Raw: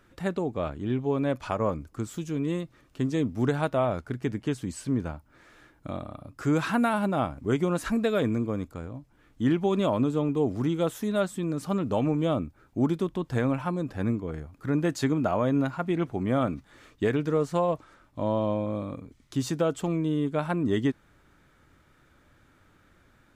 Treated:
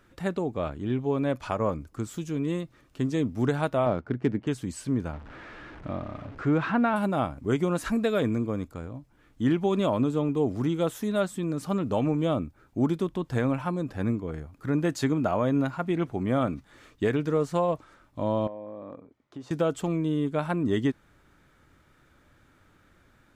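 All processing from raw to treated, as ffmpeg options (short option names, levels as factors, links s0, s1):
-filter_complex "[0:a]asettb=1/sr,asplit=3[s0][s1][s2];[s0]atrim=end=3.864[s3];[s1]atrim=start=3.86:end=4.47,asetpts=PTS-STARTPTS,afade=t=in:d=0.004:c=qsin,afade=t=out:st=0.606:d=0.004:c=qsin,highpass=f=300:p=1,lowshelf=f=470:g=10.5,adynamicsmooth=sensitivity=5:basefreq=2800[s4];[s2]atrim=start=4.466[s5];[s3][s4]acrossfade=d=0.004:c1=hsin:c2=qsin[s6];[s6][s5]acrossfade=d=0.004:c1=qsin:c2=hsin,asettb=1/sr,asplit=3[s7][s8][s9];[s7]atrim=end=5.134[s10];[s8]atrim=start=5.13:end=6.96,asetpts=PTS-STARTPTS,afade=t=in:d=0.004:c=qsin,afade=t=out:st=1.826:d=0.004:c=qsin,aeval=exprs='val(0)+0.5*0.0106*sgn(val(0))':c=same,lowpass=2500[s11];[s9]atrim=start=6.956[s12];[s10][s11]acrossfade=d=0.004:c1=hsin:c2=qsin[s13];[s13][s12]acrossfade=d=0.004:c1=qsin:c2=hsin,asettb=1/sr,asplit=3[s14][s15][s16];[s14]atrim=end=18.474[s17];[s15]atrim=start=18.47:end=19.51,asetpts=PTS-STARTPTS,afade=t=in:d=0.004:c=qsin,afade=t=out:st=1.036:d=0.004:c=qsin,bandpass=f=640:t=q:w=0.94,acompressor=threshold=0.02:ratio=10:attack=3.2:release=140:knee=1:detection=peak[s18];[s16]atrim=start=19.506[s19];[s17][s18]acrossfade=d=0.004:c1=hsin:c2=qsin[s20];[s20][s19]acrossfade=d=0.004:c1=qsin:c2=hsin"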